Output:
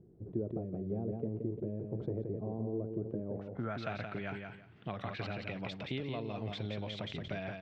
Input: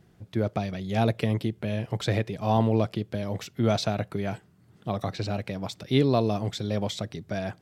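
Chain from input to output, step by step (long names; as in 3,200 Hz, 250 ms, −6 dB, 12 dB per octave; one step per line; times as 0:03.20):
0:02.78–0:05.32: dynamic equaliser 1,500 Hz, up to +7 dB, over −50 dBFS, Q 2
downward compressor 6 to 1, threshold −33 dBFS, peak gain reduction 16 dB
low-pass filter sweep 400 Hz → 2,700 Hz, 0:03.26–0:03.85
repeating echo 173 ms, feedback 19%, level −5.5 dB
level that may fall only so fast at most 80 dB per second
level −4 dB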